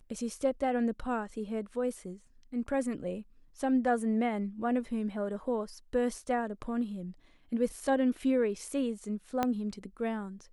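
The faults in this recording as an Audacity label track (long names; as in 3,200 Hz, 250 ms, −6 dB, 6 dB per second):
9.430000	9.430000	click −15 dBFS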